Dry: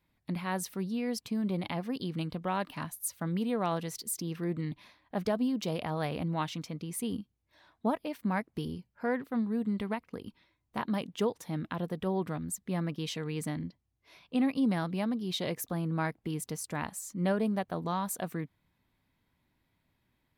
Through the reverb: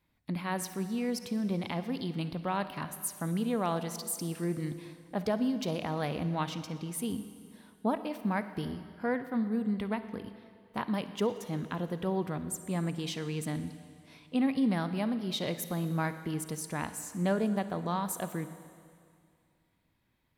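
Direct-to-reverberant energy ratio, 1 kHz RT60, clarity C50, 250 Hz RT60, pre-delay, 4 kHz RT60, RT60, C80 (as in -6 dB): 11.0 dB, 2.2 s, 11.0 dB, 2.2 s, 35 ms, 2.2 s, 2.2 s, 12.5 dB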